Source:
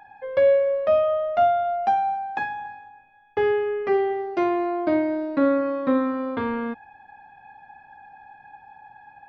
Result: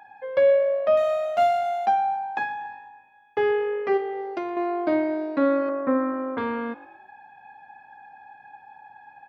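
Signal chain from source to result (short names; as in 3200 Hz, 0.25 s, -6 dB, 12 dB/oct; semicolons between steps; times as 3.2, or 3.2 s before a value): 0.97–1.86 median filter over 25 samples; HPF 220 Hz 6 dB/oct; 3.97–4.57 compressor 6:1, threshold -27 dBFS, peak gain reduction 8.5 dB; 5.69–6.38 LPF 2100 Hz 24 dB/oct; frequency-shifting echo 0.118 s, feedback 43%, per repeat +49 Hz, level -20 dB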